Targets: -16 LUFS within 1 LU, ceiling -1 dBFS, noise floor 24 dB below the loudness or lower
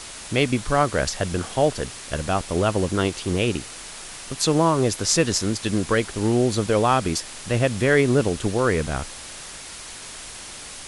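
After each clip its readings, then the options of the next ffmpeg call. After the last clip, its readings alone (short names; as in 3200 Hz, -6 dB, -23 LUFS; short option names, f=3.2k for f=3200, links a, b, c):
noise floor -38 dBFS; noise floor target -46 dBFS; loudness -22.0 LUFS; peak -3.0 dBFS; loudness target -16.0 LUFS
-> -af "afftdn=nr=8:nf=-38"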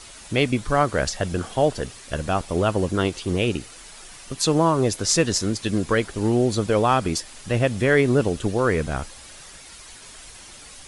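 noise floor -44 dBFS; noise floor target -47 dBFS
-> -af "afftdn=nr=6:nf=-44"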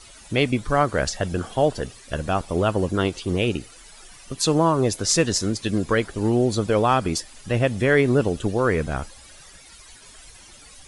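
noise floor -47 dBFS; loudness -22.5 LUFS; peak -3.5 dBFS; loudness target -16.0 LUFS
-> -af "volume=6.5dB,alimiter=limit=-1dB:level=0:latency=1"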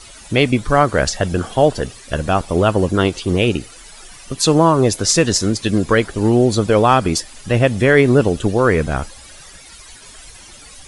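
loudness -16.0 LUFS; peak -1.0 dBFS; noise floor -41 dBFS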